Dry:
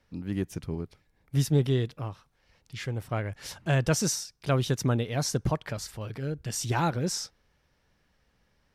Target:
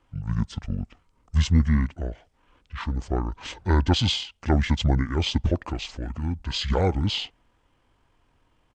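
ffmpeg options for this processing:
-af "asetrate=24750,aresample=44100,atempo=1.7818,acontrast=24"

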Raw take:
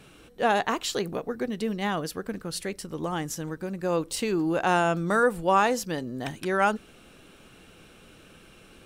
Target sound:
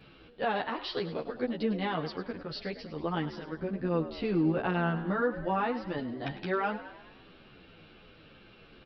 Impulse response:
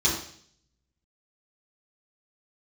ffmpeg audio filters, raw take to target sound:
-filter_complex "[0:a]asettb=1/sr,asplit=3[a][b][c];[a]atrim=end=3.574[d];[b]atrim=start=3.57:end=5.98,asetpts=PTS-STARTPTS,afade=t=in:d=0.004:c=qsin,afade=t=out:st=2.406:d=0.004:c=qsin,bass=f=250:g=7,treble=f=4k:g=-10[e];[c]atrim=start=5.976[f];[d][e]acrossfade=d=0.004:c1=hsin:c2=qsin[g];[g][f]acrossfade=d=0.004:c1=qsin:c2=hsin,alimiter=limit=-17.5dB:level=0:latency=1:release=416,asoftclip=type=hard:threshold=-18dB,asplit=7[h][i][j][k][l][m][n];[i]adelay=103,afreqshift=63,volume=-13.5dB[o];[j]adelay=206,afreqshift=126,volume=-18.7dB[p];[k]adelay=309,afreqshift=189,volume=-23.9dB[q];[l]adelay=412,afreqshift=252,volume=-29.1dB[r];[m]adelay=515,afreqshift=315,volume=-34.3dB[s];[n]adelay=618,afreqshift=378,volume=-39.5dB[t];[h][o][p][q][r][s][t]amix=inputs=7:normalize=0,aresample=11025,aresample=44100,asplit=2[u][v];[v]adelay=10.9,afreqshift=-2.4[w];[u][w]amix=inputs=2:normalize=1"

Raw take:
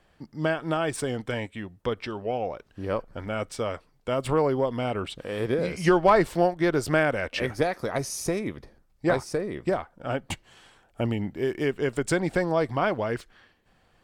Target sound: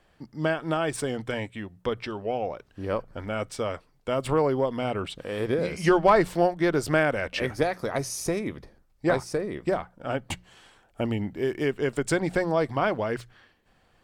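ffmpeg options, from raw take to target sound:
-af "bandreject=f=60:t=h:w=6,bandreject=f=120:t=h:w=6,bandreject=f=180:t=h:w=6"

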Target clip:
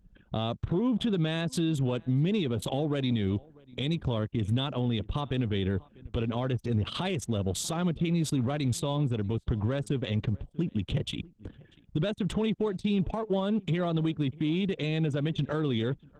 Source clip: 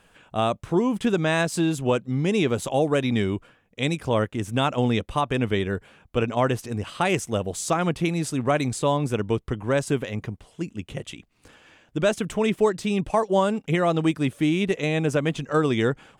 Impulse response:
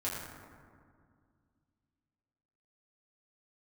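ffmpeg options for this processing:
-filter_complex "[0:a]asplit=2[a][b];[b]asoftclip=type=tanh:threshold=-27dB,volume=-7dB[c];[a][c]amix=inputs=2:normalize=0,acompressor=threshold=-32dB:ratio=6,lowshelf=f=280:g=11.5,anlmdn=0.631,equalizer=f=3.5k:t=o:w=0.49:g=13,asplit=2[d][e];[e]adelay=641.4,volume=-26dB,highshelf=f=4k:g=-14.4[f];[d][f]amix=inputs=2:normalize=0,aresample=32000,aresample=44100,alimiter=limit=-21.5dB:level=0:latency=1:release=54,highpass=f=49:p=1,acrossover=split=450[g][h];[h]acompressor=threshold=-31dB:ratio=8[i];[g][i]amix=inputs=2:normalize=0,volume=2.5dB" -ar 48000 -c:a libopus -b:a 16k

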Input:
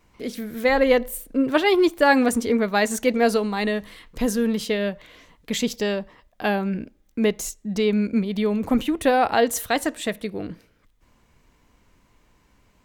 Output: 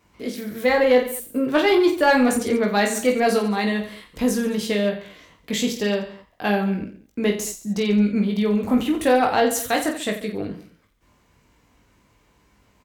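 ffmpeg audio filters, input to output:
-af "highpass=50,aecho=1:1:20|48|87.2|142.1|218.9:0.631|0.398|0.251|0.158|0.1,acontrast=43,volume=-6dB"

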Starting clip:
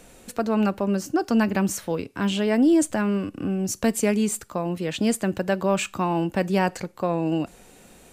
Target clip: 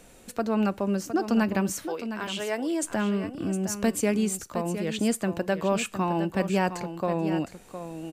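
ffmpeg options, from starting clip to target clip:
-filter_complex "[0:a]asettb=1/sr,asplit=3[a][b][c];[a]atrim=end=1.864[d];[b]atrim=start=1.86:end=2.83,asetpts=PTS-STARTPTS,afade=t=in:d=0.004:c=qsin,afade=t=out:st=0.966:d=0.004:c=qsin,highpass=490[e];[c]atrim=start=2.826[f];[d][e]acrossfade=d=0.004:c1=hsin:c2=qsin[g];[g][f]acrossfade=d=0.004:c1=qsin:c2=hsin,aecho=1:1:711:0.299,volume=-3dB"

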